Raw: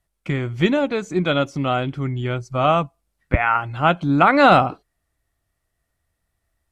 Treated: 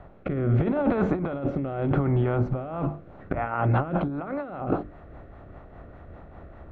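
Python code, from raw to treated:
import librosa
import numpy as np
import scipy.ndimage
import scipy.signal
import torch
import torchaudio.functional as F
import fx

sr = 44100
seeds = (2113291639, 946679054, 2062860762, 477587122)

y = fx.bin_compress(x, sr, power=0.6)
y = scipy.signal.sosfilt(scipy.signal.butter(2, 1100.0, 'lowpass', fs=sr, output='sos'), y)
y = fx.hum_notches(y, sr, base_hz=50, count=7)
y = fx.over_compress(y, sr, threshold_db=-25.0, ratio=-1.0)
y = fx.rotary_switch(y, sr, hz=0.8, then_hz=5.0, switch_at_s=2.4)
y = fx.band_squash(y, sr, depth_pct=70, at=(0.6, 1.1))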